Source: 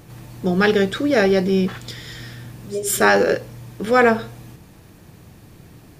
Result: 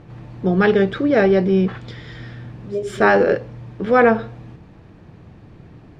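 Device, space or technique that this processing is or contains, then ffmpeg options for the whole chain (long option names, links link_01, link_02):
phone in a pocket: -af "lowpass=3900,highshelf=frequency=2400:gain=-9,volume=2dB"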